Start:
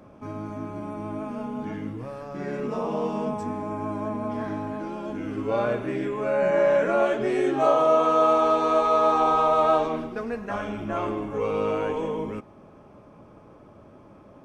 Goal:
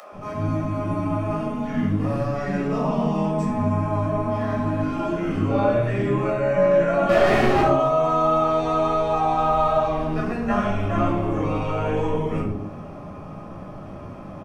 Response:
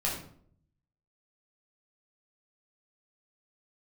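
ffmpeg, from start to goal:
-filter_complex "[0:a]acrossover=split=140[a][b];[b]acompressor=threshold=-33dB:ratio=3[c];[a][c]amix=inputs=2:normalize=0,acrossover=split=420[d][e];[d]adelay=120[f];[f][e]amix=inputs=2:normalize=0,asettb=1/sr,asplit=3[g][h][i];[g]atrim=end=7.094[j];[h]atrim=start=7.09:end=7.61,asetpts=PTS-STARTPTS,afade=t=in:d=0.004:c=qsin,afade=t=out:st=0.516:d=0.004:c=qsin,asplit=2[k][l];[l]highpass=f=720:p=1,volume=39dB,asoftclip=type=tanh:threshold=-21dB[m];[k][m]amix=inputs=2:normalize=0,lowpass=f=1.1k:p=1,volume=-6dB[n];[i]atrim=start=7.606[o];[j][n]acrossfade=d=0.004:c1=hsin:c2=qsin[p];[p][o]acrossfade=d=0.004:c1=qsin:c2=hsin[q];[1:a]atrim=start_sample=2205,afade=t=out:st=0.24:d=0.01,atrim=end_sample=11025[r];[q][r]afir=irnorm=-1:irlink=0,acrossover=split=690[s][t];[t]acompressor=mode=upward:threshold=-47dB:ratio=2.5[u];[s][u]amix=inputs=2:normalize=0,volume=5dB"

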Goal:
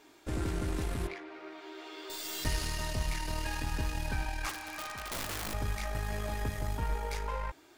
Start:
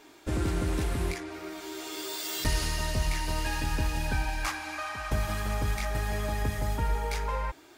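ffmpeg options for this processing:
-filter_complex "[0:a]aeval=exprs='0.168*(cos(1*acos(clip(val(0)/0.168,-1,1)))-cos(1*PI/2))+0.0531*(cos(2*acos(clip(val(0)/0.168,-1,1)))-cos(2*PI/2))+0.0237*(cos(4*acos(clip(val(0)/0.168,-1,1)))-cos(4*PI/2))+0.00299*(cos(6*acos(clip(val(0)/0.168,-1,1)))-cos(6*PI/2))+0.0075*(cos(8*acos(clip(val(0)/0.168,-1,1)))-cos(8*PI/2))':c=same,asettb=1/sr,asplit=3[a][b][c];[a]atrim=end=1.074[d];[b]atrim=start=1.07:end=2.1,asetpts=PTS-STARTPTS,afade=t=in:d=0.004:c=qsin,afade=t=out:st=1.026:d=0.004:c=qsin,acrossover=split=260 4100:gain=0.0891 1 0.0794[e][f][g];[e][f][g]amix=inputs=3:normalize=0[h];[c]atrim=start=2.096[i];[d][h]acrossfade=d=0.004:c1=hsin:c2=qsin[j];[j][i]acrossfade=d=0.004:c1=qsin:c2=hsin,asettb=1/sr,asplit=3[k][l][m];[k]atrim=end=4.494[n];[l]atrim=start=4.49:end=5.54,asetpts=PTS-STARTPTS,afade=t=in:d=0.004:c=qsin,afade=t=out:st=1.046:d=0.004:c=qsin,aeval=exprs='(mod(21.1*val(0)+1,2)-1)/21.1':c=same[o];[m]atrim=start=5.536[p];[n][o]acrossfade=d=0.004:c1=hsin:c2=qsin[q];[q][p]acrossfade=d=0.004:c1=qsin:c2=hsin,volume=-5dB"

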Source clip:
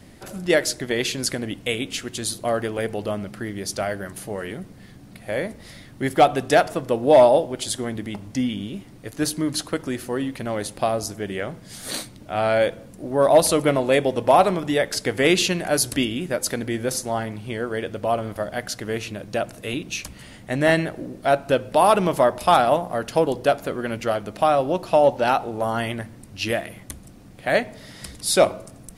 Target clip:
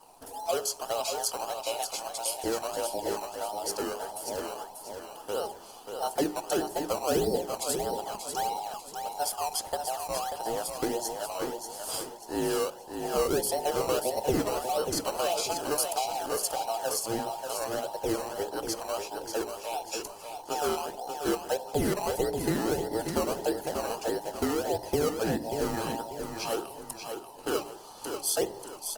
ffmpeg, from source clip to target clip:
-filter_complex "[0:a]afftfilt=real='real(if(between(b,1,1008),(2*floor((b-1)/48)+1)*48-b,b),0)':imag='imag(if(between(b,1,1008),(2*floor((b-1)/48)+1)*48-b,b),0)*if(between(b,1,1008),-1,1)':win_size=2048:overlap=0.75,acrossover=split=1000[a][b];[a]acrusher=samples=18:mix=1:aa=0.000001:lfo=1:lforange=18:lforate=1.6[c];[b]highshelf=f=8.2k:g=3.5[d];[c][d]amix=inputs=2:normalize=0,bandreject=f=60:t=h:w=6,bandreject=f=120:t=h:w=6,bandreject=f=180:t=h:w=6,bandreject=f=240:t=h:w=6,bandreject=f=300:t=h:w=6,bandreject=f=360:t=h:w=6,bandreject=f=420:t=h:w=6,acompressor=threshold=-20dB:ratio=4,equalizer=f=2.1k:w=1.7:g=-13,bandreject=f=3.7k:w=7.3,aecho=1:1:588|1176|1764|2352:0.473|0.17|0.0613|0.0221,volume=-4.5dB" -ar 48000 -c:a libopus -b:a 24k

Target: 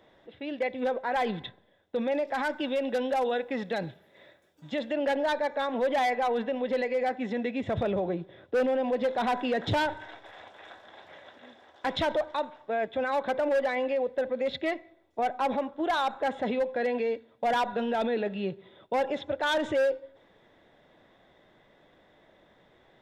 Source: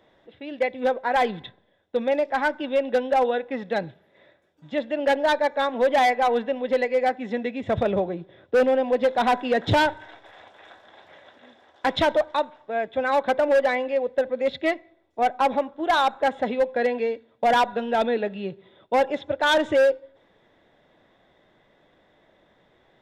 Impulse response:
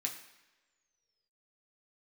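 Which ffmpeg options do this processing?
-filter_complex "[0:a]asettb=1/sr,asplit=3[a][b][c];[a]atrim=end=2.274[d];[b]atrim=start=2.27:end=4.93,asetpts=PTS-STARTPTS,afade=t=in:d=0.004:c=qsin,afade=t=out:st=2.656:d=0.004:c=qsin,highshelf=f=4.9k:g=10[e];[c]atrim=start=4.926[f];[d][e]acrossfade=d=0.004:c1=hsin:c2=qsin[g];[g][f]acrossfade=d=0.004:c1=qsin:c2=hsin,alimiter=limit=-21.5dB:level=0:latency=1:release=25"

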